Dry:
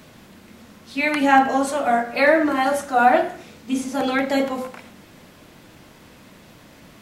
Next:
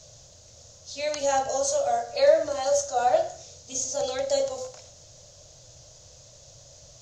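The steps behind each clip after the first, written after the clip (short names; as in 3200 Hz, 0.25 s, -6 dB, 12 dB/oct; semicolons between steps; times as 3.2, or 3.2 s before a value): EQ curve 130 Hz 0 dB, 210 Hz -27 dB, 390 Hz -17 dB, 570 Hz +1 dB, 910 Hz -14 dB, 2200 Hz -18 dB, 6700 Hz +14 dB, 9500 Hz -21 dB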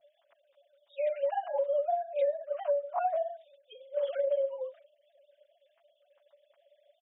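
sine-wave speech; comb 7.2 ms, depth 85%; compressor 16:1, threshold -26 dBFS, peak gain reduction 19.5 dB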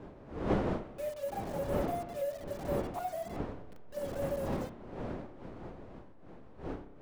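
level-crossing sampler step -37.5 dBFS; wind noise 470 Hz -32 dBFS; spring tank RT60 1.3 s, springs 30 ms, chirp 50 ms, DRR 13 dB; gain -7.5 dB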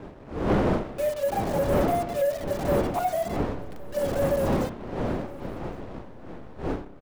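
sample leveller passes 2; AGC gain up to 4 dB; echo 1.113 s -22 dB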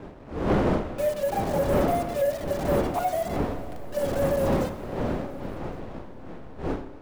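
plate-style reverb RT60 3.2 s, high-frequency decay 0.95×, DRR 12 dB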